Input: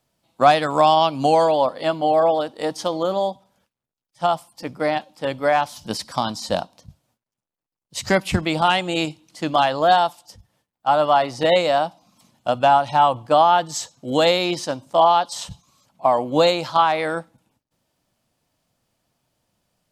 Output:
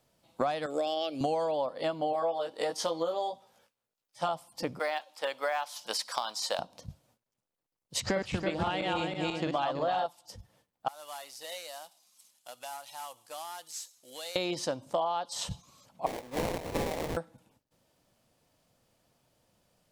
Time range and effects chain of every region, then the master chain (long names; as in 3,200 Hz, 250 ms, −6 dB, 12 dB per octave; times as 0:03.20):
0:00.66–0:01.21: high-pass filter 86 Hz + phaser with its sweep stopped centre 410 Hz, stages 4
0:02.13–0:04.29: low-shelf EQ 270 Hz −11 dB + double-tracking delay 18 ms −2 dB
0:04.79–0:06.59: high-pass filter 830 Hz + floating-point word with a short mantissa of 4 bits
0:08.00–0:10.06: feedback delay that plays each chunk backwards 163 ms, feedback 50%, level −1.5 dB + high-frequency loss of the air 66 metres
0:10.88–0:14.36: variable-slope delta modulation 64 kbit/s + first difference + downward compressor 1.5 to 1, threshold −56 dBFS
0:16.06–0:17.17: guitar amp tone stack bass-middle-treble 5-5-5 + mid-hump overdrive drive 14 dB, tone 6,500 Hz, clips at −5 dBFS + sample-rate reduction 1,400 Hz, jitter 20%
whole clip: parametric band 500 Hz +4.5 dB 0.58 octaves; downward compressor 6 to 1, threshold −29 dBFS